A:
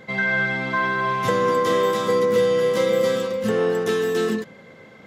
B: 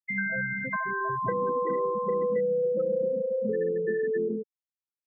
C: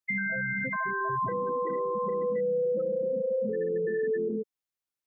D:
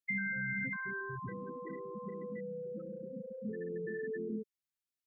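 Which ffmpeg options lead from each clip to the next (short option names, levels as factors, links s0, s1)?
-filter_complex "[0:a]afftfilt=real='re*gte(hypot(re,im),0.224)':imag='im*gte(hypot(re,im),0.224)':win_size=1024:overlap=0.75,acrossover=split=210|520[s0][s1][s2];[s0]acompressor=threshold=0.01:ratio=4[s3];[s1]acompressor=threshold=0.02:ratio=4[s4];[s2]acompressor=threshold=0.0316:ratio=4[s5];[s3][s4][s5]amix=inputs=3:normalize=0"
-af "alimiter=level_in=1.26:limit=0.0631:level=0:latency=1:release=89,volume=0.794,volume=1.41"
-af "asuperstop=centerf=730:order=4:qfactor=0.68,volume=0.596"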